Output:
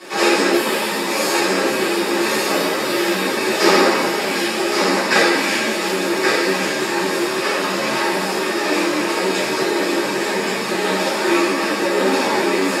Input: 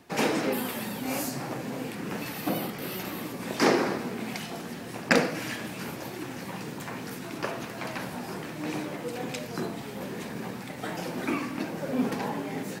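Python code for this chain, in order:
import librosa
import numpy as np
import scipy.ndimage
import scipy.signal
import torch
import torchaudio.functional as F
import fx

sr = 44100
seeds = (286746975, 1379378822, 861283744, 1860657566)

y = fx.bin_compress(x, sr, power=0.6)
y = fx.bandpass_edges(y, sr, low_hz=350.0, high_hz=7800.0)
y = fx.high_shelf(y, sr, hz=3500.0, db=9.0)
y = fx.notch(y, sr, hz=6000.0, q=7.6)
y = y + 10.0 ** (-4.5 / 20.0) * np.pad(y, (int(1124 * sr / 1000.0), 0))[:len(y)]
y = fx.rev_fdn(y, sr, rt60_s=1.1, lf_ratio=1.55, hf_ratio=0.75, size_ms=16.0, drr_db=-9.5)
y = fx.ensemble(y, sr)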